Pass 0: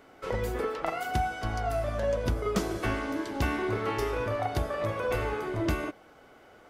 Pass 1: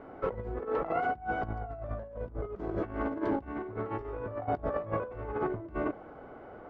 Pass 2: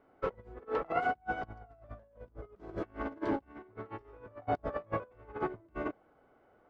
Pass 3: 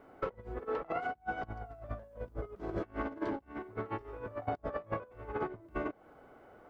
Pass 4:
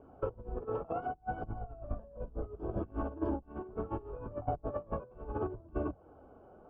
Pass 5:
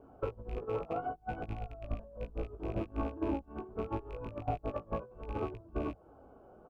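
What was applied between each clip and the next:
LPF 1100 Hz 12 dB/oct; negative-ratio compressor -36 dBFS, ratio -0.5; gain +2.5 dB
high shelf 2500 Hz +10.5 dB; upward expander 2.5:1, over -39 dBFS
compressor 12:1, threshold -41 dBFS, peak gain reduction 16 dB; gain +8.5 dB
octaver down 2 oct, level -3 dB; running mean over 22 samples; flange 0.69 Hz, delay 0.3 ms, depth 5.3 ms, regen -47%; gain +5.5 dB
rattling part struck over -41 dBFS, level -41 dBFS; doubler 18 ms -7.5 dB; gain -1 dB

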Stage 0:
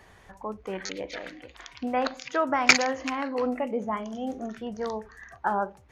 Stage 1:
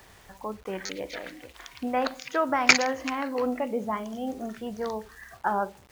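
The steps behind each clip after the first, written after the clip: bit-crush 9-bit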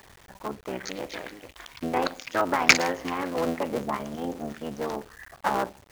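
cycle switcher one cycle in 3, muted; gain +2 dB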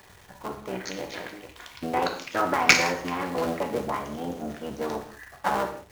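non-linear reverb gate 0.22 s falling, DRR 3.5 dB; gain -1 dB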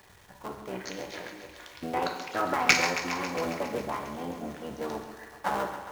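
thinning echo 0.136 s, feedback 73%, high-pass 220 Hz, level -10.5 dB; gain -4 dB

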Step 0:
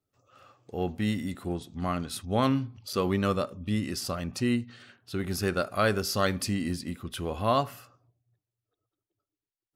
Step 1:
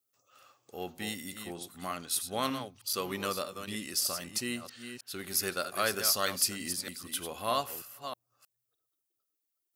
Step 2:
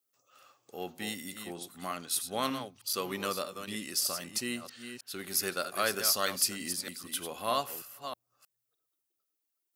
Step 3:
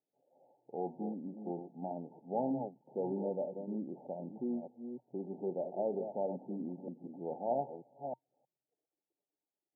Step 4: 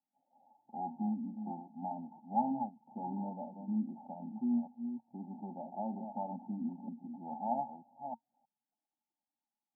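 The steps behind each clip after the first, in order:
reverse delay 0.313 s, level -8.5 dB; RIAA curve recording; gain -5 dB
HPF 120 Hz 12 dB/oct
in parallel at -8.5 dB: wrapped overs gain 29 dB; on the sum: FFT band-pass 120–920 Hz
double band-pass 440 Hz, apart 1.9 oct; gain +9 dB

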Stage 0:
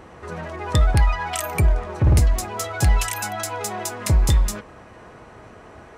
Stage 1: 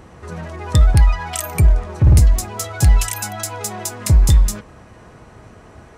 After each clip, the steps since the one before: tone controls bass +7 dB, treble +6 dB; gain -1.5 dB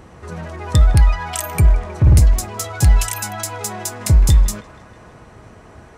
band-limited delay 0.158 s, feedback 62%, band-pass 1200 Hz, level -10 dB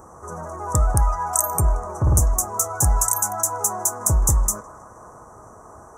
EQ curve 200 Hz 0 dB, 1200 Hz +13 dB, 2800 Hz -26 dB, 4300 Hz -21 dB, 6100 Hz +13 dB; gain -7.5 dB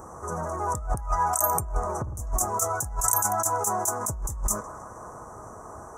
negative-ratio compressor -22 dBFS, ratio -0.5; gain -2.5 dB

